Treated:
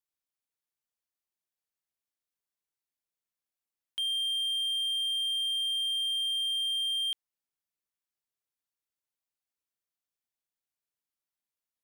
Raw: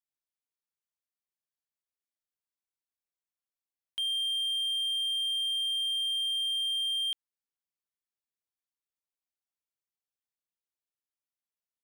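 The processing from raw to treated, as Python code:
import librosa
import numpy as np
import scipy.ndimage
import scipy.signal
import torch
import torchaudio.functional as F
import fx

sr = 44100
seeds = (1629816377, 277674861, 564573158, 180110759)

y = fx.peak_eq(x, sr, hz=14000.0, db=2.0, octaves=0.76)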